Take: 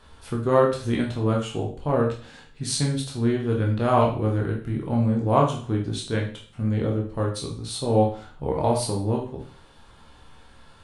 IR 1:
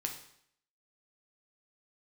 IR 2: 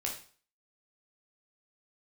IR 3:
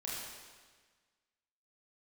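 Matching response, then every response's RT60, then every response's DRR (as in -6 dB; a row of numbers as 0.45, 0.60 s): 2; 0.65, 0.45, 1.5 s; 2.5, -1.5, -6.5 dB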